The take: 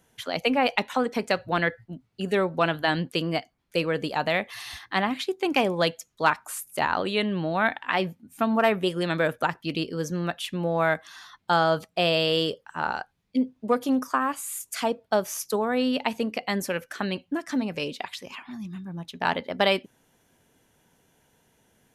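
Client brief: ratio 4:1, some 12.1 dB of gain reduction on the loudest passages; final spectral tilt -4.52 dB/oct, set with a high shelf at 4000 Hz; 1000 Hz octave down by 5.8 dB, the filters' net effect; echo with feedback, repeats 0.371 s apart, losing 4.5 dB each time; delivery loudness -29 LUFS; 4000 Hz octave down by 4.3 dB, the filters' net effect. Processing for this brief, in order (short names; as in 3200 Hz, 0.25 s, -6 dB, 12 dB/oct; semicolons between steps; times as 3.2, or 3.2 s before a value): bell 1000 Hz -8 dB; high shelf 4000 Hz +4.5 dB; bell 4000 Hz -8 dB; compressor 4:1, threshold -35 dBFS; feedback echo 0.371 s, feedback 60%, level -4.5 dB; gain +7.5 dB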